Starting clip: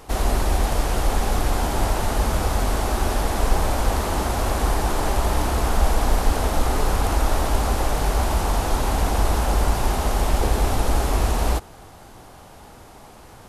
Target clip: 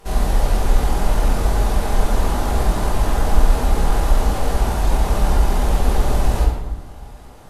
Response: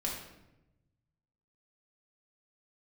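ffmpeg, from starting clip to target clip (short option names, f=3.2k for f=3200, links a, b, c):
-filter_complex "[0:a]atempo=1.8[a];[1:a]atrim=start_sample=2205,asetrate=36603,aresample=44100[b];[a][b]afir=irnorm=-1:irlink=0,volume=-4dB"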